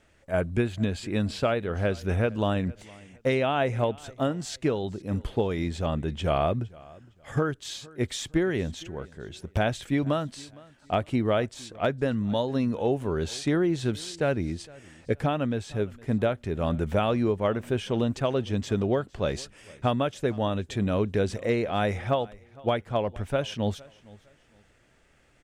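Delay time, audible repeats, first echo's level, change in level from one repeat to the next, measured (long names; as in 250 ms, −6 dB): 461 ms, 2, −23.0 dB, −11.0 dB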